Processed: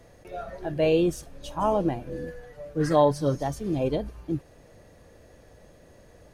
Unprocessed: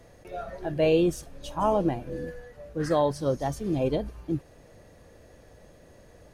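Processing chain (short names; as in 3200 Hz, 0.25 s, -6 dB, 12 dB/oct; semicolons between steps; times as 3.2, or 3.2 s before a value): 2.42–3.43 comb 6.8 ms, depth 73%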